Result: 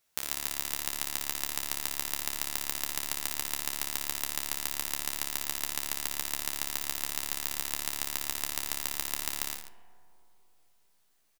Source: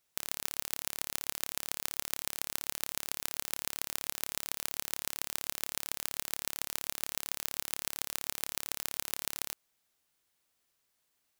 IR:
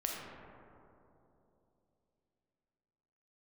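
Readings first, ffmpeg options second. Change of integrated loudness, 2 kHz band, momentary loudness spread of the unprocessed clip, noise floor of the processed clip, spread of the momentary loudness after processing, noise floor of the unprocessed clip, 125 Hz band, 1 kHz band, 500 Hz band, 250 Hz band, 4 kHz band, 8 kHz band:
+4.0 dB, +4.0 dB, 1 LU, −67 dBFS, 0 LU, −78 dBFS, +4.0 dB, +4.5 dB, +1.5 dB, +5.0 dB, +4.0 dB, +4.0 dB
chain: -filter_complex "[0:a]asplit=2[link_01][link_02];[link_02]adelay=13,volume=-5dB[link_03];[link_01][link_03]amix=inputs=2:normalize=0,aecho=1:1:59|139:0.422|0.251,asplit=2[link_04][link_05];[1:a]atrim=start_sample=2205[link_06];[link_05][link_06]afir=irnorm=-1:irlink=0,volume=-12dB[link_07];[link_04][link_07]amix=inputs=2:normalize=0"

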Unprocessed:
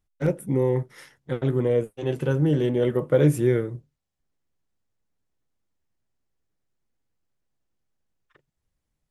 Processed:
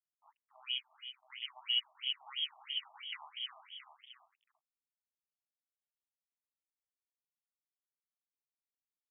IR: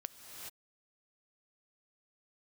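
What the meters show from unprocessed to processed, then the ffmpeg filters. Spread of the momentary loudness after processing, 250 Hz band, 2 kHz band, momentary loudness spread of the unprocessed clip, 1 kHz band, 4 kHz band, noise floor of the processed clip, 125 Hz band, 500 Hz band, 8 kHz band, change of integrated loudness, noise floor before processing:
18 LU, below −40 dB, −8.0 dB, 11 LU, −14.5 dB, +12.0 dB, below −85 dBFS, below −40 dB, below −40 dB, below −30 dB, −14.5 dB, −81 dBFS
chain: -filter_complex "[0:a]bandreject=frequency=50:width_type=h:width=6,bandreject=frequency=100:width_type=h:width=6,bandreject=frequency=150:width_type=h:width=6,bandreject=frequency=200:width_type=h:width=6,bandreject=frequency=250:width_type=h:width=6,bandreject=frequency=300:width_type=h:width=6,bandreject=frequency=350:width_type=h:width=6,dynaudnorm=framelen=110:gausssize=9:maxgain=11.5dB,lowpass=frequency=2900:width_type=q:width=0.5098,lowpass=frequency=2900:width_type=q:width=0.6013,lowpass=frequency=2900:width_type=q:width=0.9,lowpass=frequency=2900:width_type=q:width=2.563,afreqshift=-3400,asplit=3[link_01][link_02][link_03];[link_01]bandpass=frequency=300:width_type=q:width=8,volume=0dB[link_04];[link_02]bandpass=frequency=870:width_type=q:width=8,volume=-6dB[link_05];[link_03]bandpass=frequency=2240:width_type=q:width=8,volume=-9dB[link_06];[link_04][link_05][link_06]amix=inputs=3:normalize=0,aeval=exprs='0.106*(cos(1*acos(clip(val(0)/0.106,-1,1)))-cos(1*PI/2))+0.0133*(cos(3*acos(clip(val(0)/0.106,-1,1)))-cos(3*PI/2))+0.00531*(cos(5*acos(clip(val(0)/0.106,-1,1)))-cos(5*PI/2))+0.0335*(cos(6*acos(clip(val(0)/0.106,-1,1)))-cos(6*PI/2))+0.015*(cos(8*acos(clip(val(0)/0.106,-1,1)))-cos(8*PI/2))':channel_layout=same,asplit=2[link_07][link_08];[link_08]adelay=672,lowpass=frequency=1600:poles=1,volume=-5.5dB,asplit=2[link_09][link_10];[link_10]adelay=672,lowpass=frequency=1600:poles=1,volume=0.21,asplit=2[link_11][link_12];[link_12]adelay=672,lowpass=frequency=1600:poles=1,volume=0.21[link_13];[link_07][link_09][link_11][link_13]amix=inputs=4:normalize=0,asplit=2[link_14][link_15];[1:a]atrim=start_sample=2205[link_16];[link_15][link_16]afir=irnorm=-1:irlink=0,volume=4.5dB[link_17];[link_14][link_17]amix=inputs=2:normalize=0,aeval=exprs='sgn(val(0))*max(abs(val(0))-0.0112,0)':channel_layout=same,afftfilt=real='re*between(b*sr/1024,860*pow(2600/860,0.5+0.5*sin(2*PI*3*pts/sr))/1.41,860*pow(2600/860,0.5+0.5*sin(2*PI*3*pts/sr))*1.41)':imag='im*between(b*sr/1024,860*pow(2600/860,0.5+0.5*sin(2*PI*3*pts/sr))/1.41,860*pow(2600/860,0.5+0.5*sin(2*PI*3*pts/sr))*1.41)':win_size=1024:overlap=0.75,volume=-4dB"

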